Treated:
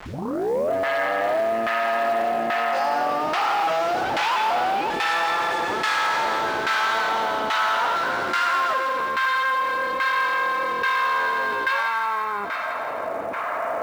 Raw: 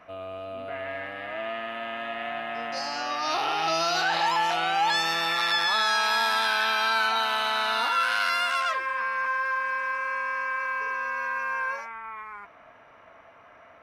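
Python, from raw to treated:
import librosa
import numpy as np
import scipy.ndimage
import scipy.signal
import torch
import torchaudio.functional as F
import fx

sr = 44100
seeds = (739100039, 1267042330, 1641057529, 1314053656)

p1 = fx.tape_start_head(x, sr, length_s=0.73)
p2 = fx.recorder_agc(p1, sr, target_db=-18.0, rise_db_per_s=5.4, max_gain_db=30)
p3 = fx.peak_eq(p2, sr, hz=3600.0, db=-6.5, octaves=2.6)
p4 = 10.0 ** (-27.0 / 20.0) * (np.abs((p3 / 10.0 ** (-27.0 / 20.0) + 3.0) % 4.0 - 2.0) - 1.0)
p5 = p4 + fx.echo_wet_highpass(p4, sr, ms=169, feedback_pct=75, hz=1900.0, wet_db=-4.5, dry=0)
p6 = fx.quant_dither(p5, sr, seeds[0], bits=10, dither='none')
p7 = fx.filter_lfo_bandpass(p6, sr, shape='saw_down', hz=1.2, low_hz=330.0, high_hz=1600.0, q=0.91)
p8 = fx.quant_float(p7, sr, bits=2)
p9 = p7 + (p8 * 10.0 ** (-7.5 / 20.0))
p10 = fx.env_flatten(p9, sr, amount_pct=50)
y = p10 * 10.0 ** (7.5 / 20.0)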